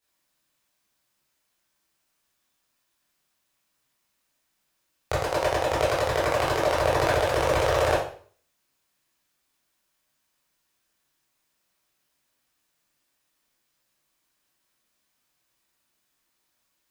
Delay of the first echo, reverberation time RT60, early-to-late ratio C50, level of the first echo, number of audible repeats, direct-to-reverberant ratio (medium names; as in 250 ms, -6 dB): no echo, 0.45 s, 2.5 dB, no echo, no echo, -8.5 dB